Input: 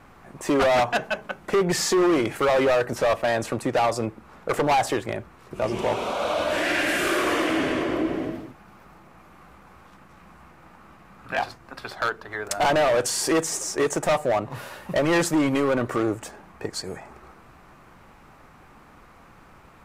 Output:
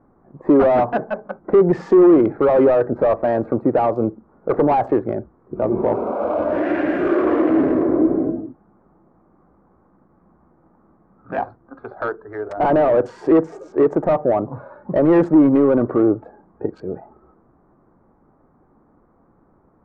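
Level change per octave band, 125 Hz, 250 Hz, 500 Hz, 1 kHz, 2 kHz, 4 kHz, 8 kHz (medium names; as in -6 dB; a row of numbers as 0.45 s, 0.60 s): +4.5 dB, +9.5 dB, +7.0 dB, +2.5 dB, -6.0 dB, under -15 dB, under -30 dB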